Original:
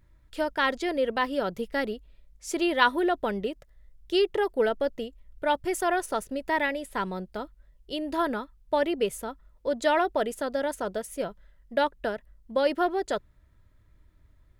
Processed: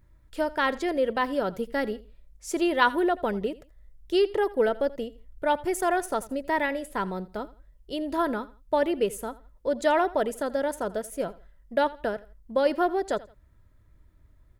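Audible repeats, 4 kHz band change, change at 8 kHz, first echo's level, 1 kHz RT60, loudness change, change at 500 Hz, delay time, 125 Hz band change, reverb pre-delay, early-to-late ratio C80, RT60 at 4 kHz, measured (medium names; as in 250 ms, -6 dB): 2, -3.0 dB, +0.5 dB, -19.5 dB, no reverb, +1.0 dB, +1.5 dB, 83 ms, no reading, no reverb, no reverb, no reverb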